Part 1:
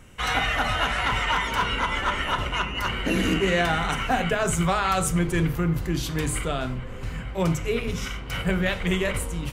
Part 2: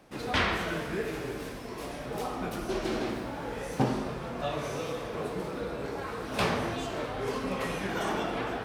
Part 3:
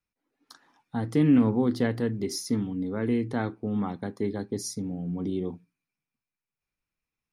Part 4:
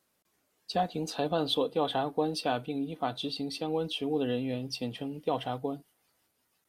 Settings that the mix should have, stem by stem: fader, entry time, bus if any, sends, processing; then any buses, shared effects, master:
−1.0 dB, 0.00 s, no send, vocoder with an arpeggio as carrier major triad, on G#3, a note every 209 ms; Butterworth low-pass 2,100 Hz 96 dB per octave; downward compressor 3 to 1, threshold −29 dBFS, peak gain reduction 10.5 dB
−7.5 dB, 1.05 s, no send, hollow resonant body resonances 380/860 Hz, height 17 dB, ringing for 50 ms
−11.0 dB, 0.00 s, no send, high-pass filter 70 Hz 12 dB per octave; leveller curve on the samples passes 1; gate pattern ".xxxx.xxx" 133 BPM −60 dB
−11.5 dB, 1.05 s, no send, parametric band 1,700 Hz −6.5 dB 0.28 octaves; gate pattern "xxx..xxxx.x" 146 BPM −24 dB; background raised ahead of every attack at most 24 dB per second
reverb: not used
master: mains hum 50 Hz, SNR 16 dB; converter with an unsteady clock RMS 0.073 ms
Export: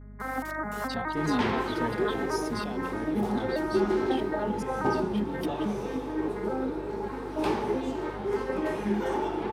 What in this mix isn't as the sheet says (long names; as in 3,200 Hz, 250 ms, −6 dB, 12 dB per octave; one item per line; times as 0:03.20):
stem 4: entry 1.05 s → 0.20 s
master: missing converter with an unsteady clock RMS 0.073 ms